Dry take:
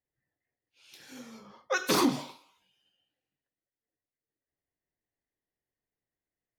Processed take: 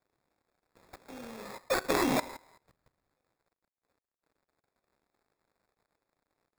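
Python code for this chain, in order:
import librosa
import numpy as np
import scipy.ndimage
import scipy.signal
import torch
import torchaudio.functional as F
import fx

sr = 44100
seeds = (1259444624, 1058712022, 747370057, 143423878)

p1 = scipy.signal.medfilt(x, 25)
p2 = fx.over_compress(p1, sr, threshold_db=-36.0, ratio=-1.0)
p3 = p1 + (p2 * librosa.db_to_amplitude(-1.0))
p4 = fx.riaa(p3, sr, side='recording')
p5 = fx.level_steps(p4, sr, step_db=17)
p6 = fx.peak_eq(p5, sr, hz=570.0, db=5.0, octaves=2.1)
p7 = fx.sample_hold(p6, sr, seeds[0], rate_hz=3000.0, jitter_pct=0)
y = p7 * librosa.db_to_amplitude(4.0)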